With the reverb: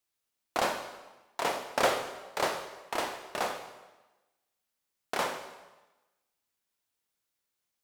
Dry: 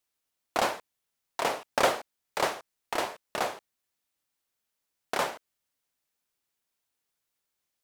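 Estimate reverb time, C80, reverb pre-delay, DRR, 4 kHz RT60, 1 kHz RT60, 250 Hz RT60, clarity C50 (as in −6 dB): 1.1 s, 9.5 dB, 7 ms, 5.5 dB, 1.0 s, 1.1 s, 1.2 s, 8.0 dB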